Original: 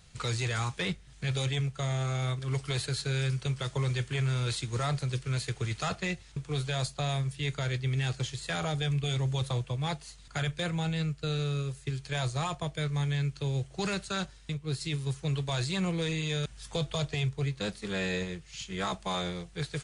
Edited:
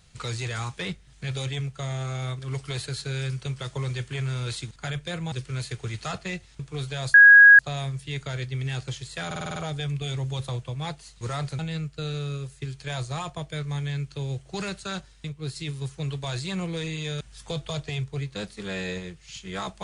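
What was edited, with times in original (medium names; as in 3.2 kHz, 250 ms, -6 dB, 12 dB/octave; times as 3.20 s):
4.71–5.09 s: swap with 10.23–10.84 s
6.91 s: add tone 1.65 kHz -7.5 dBFS 0.45 s
8.58 s: stutter 0.05 s, 7 plays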